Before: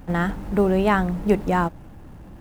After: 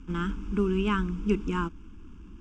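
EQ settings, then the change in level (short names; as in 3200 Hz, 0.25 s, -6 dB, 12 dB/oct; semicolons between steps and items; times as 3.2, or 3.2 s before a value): LPF 5700 Hz 12 dB/oct; fixed phaser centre 310 Hz, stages 4; fixed phaser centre 2800 Hz, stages 8; 0.0 dB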